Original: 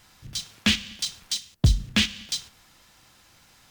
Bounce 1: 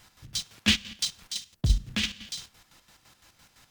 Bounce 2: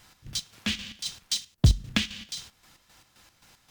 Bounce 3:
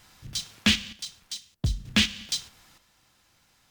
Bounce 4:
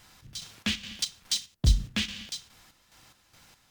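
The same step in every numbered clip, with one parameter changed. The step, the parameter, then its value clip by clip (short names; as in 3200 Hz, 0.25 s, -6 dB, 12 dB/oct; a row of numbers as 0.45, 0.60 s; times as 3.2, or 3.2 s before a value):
chopper, rate: 5.9, 3.8, 0.54, 2.4 Hz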